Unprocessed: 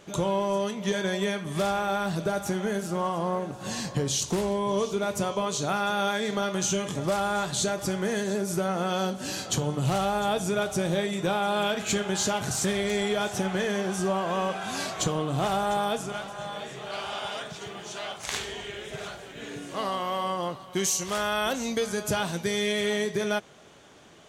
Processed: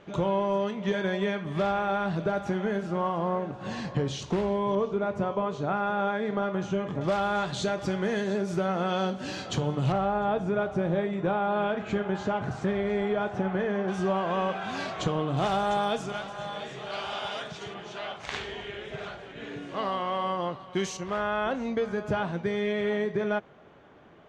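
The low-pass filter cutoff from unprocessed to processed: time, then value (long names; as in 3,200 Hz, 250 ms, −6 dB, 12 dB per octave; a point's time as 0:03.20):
2,700 Hz
from 0:04.75 1,600 Hz
from 0:07.01 3,600 Hz
from 0:09.92 1,600 Hz
from 0:13.88 3,200 Hz
from 0:15.37 5,300 Hz
from 0:17.74 3,100 Hz
from 0:20.97 1,800 Hz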